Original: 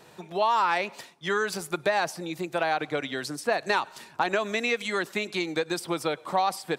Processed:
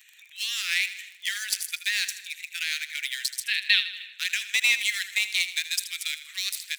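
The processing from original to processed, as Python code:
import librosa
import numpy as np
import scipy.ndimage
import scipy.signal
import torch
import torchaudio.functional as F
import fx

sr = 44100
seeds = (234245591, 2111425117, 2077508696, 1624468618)

p1 = fx.wiener(x, sr, points=9)
p2 = scipy.signal.sosfilt(scipy.signal.butter(8, 1900.0, 'highpass', fs=sr, output='sos'), p1)
p3 = fx.dmg_crackle(p2, sr, seeds[0], per_s=18.0, level_db=-50.0)
p4 = fx.tilt_eq(p3, sr, slope=4.0)
p5 = np.clip(p4, -10.0 ** (-21.5 / 20.0), 10.0 ** (-21.5 / 20.0))
p6 = p4 + F.gain(torch.from_numpy(p5), -5.0).numpy()
p7 = fx.high_shelf_res(p6, sr, hz=4800.0, db=-11.0, q=3.0, at=(3.43, 4.13))
y = p7 + fx.echo_feedback(p7, sr, ms=79, feedback_pct=55, wet_db=-13.0, dry=0)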